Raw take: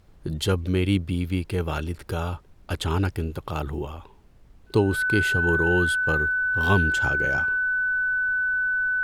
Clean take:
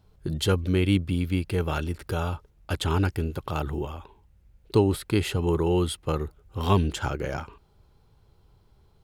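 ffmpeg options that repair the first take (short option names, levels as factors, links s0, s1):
-af "bandreject=f=1500:w=30,agate=range=0.0891:threshold=0.00708"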